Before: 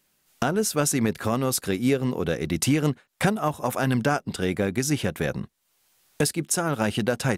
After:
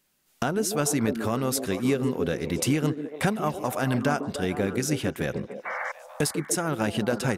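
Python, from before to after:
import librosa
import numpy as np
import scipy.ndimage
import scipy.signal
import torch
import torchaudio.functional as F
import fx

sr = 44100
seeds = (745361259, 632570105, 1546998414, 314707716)

y = fx.spec_paint(x, sr, seeds[0], shape='noise', start_s=5.65, length_s=0.27, low_hz=490.0, high_hz=2300.0, level_db=-29.0)
y = fx.echo_stepped(y, sr, ms=146, hz=310.0, octaves=0.7, feedback_pct=70, wet_db=-4)
y = F.gain(torch.from_numpy(y), -2.5).numpy()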